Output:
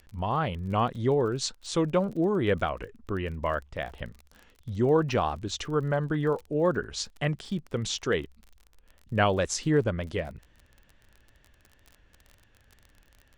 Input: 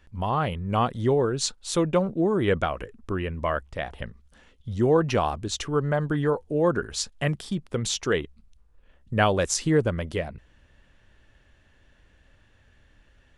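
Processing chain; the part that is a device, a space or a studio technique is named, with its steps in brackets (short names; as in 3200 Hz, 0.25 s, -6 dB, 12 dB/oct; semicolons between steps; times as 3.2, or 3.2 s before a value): lo-fi chain (LPF 6800 Hz 12 dB/oct; wow and flutter; crackle 31/s -36 dBFS); gain -2.5 dB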